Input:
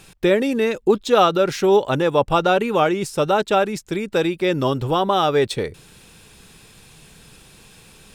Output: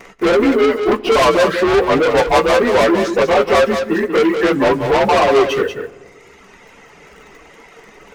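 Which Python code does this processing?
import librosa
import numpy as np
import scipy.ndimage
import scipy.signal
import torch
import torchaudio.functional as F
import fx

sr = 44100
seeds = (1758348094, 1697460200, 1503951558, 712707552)

p1 = fx.partial_stretch(x, sr, pct=90)
p2 = fx.graphic_eq(p1, sr, hz=(125, 250, 500, 1000, 2000, 4000, 8000), db=(-10, 4, 11, 7, 7, -6, -6))
p3 = fx.wow_flutter(p2, sr, seeds[0], rate_hz=2.1, depth_cents=27.0)
p4 = fx.quant_dither(p3, sr, seeds[1], bits=6, dither='none')
p5 = p3 + (p4 * librosa.db_to_amplitude(-11.0))
p6 = fx.dereverb_blind(p5, sr, rt60_s=1.4)
p7 = 10.0 ** (-16.5 / 20.0) * np.tanh(p6 / 10.0 ** (-16.5 / 20.0))
p8 = fx.doubler(p7, sr, ms=15.0, db=-12.5)
p9 = p8 + fx.echo_single(p8, sr, ms=188, db=-7.5, dry=0)
p10 = fx.room_shoebox(p9, sr, seeds[2], volume_m3=3900.0, walls='mixed', distance_m=0.3)
y = p10 * librosa.db_to_amplitude(5.5)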